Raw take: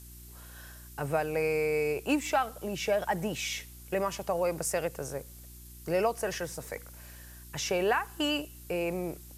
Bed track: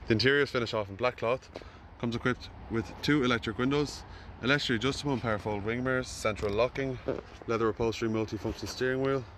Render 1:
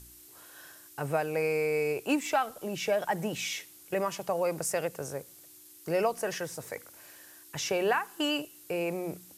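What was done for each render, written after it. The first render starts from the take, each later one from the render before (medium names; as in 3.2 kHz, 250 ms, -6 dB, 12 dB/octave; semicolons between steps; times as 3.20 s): de-hum 60 Hz, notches 4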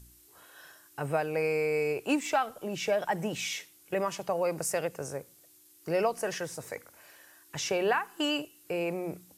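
noise print and reduce 6 dB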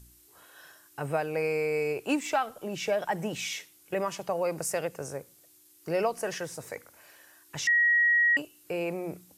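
7.67–8.37 s: bleep 1.9 kHz -19.5 dBFS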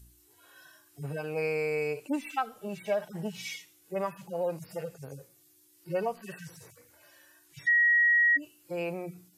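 harmonic-percussive separation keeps harmonic; dynamic bell 350 Hz, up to -4 dB, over -42 dBFS, Q 1.9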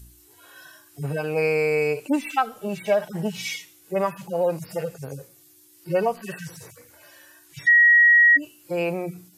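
trim +8.5 dB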